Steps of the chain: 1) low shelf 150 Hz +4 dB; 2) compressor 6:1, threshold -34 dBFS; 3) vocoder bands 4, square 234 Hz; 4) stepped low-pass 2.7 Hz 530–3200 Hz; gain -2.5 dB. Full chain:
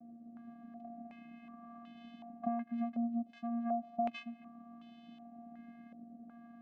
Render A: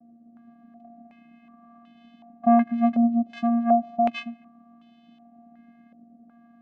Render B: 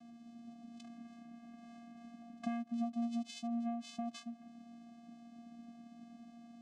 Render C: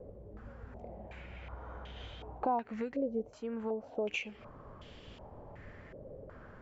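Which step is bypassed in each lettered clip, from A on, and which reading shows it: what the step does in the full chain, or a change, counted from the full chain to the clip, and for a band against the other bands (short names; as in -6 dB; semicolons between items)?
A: 2, mean gain reduction 4.5 dB; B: 4, 4 kHz band +10.0 dB; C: 3, 250 Hz band -11.0 dB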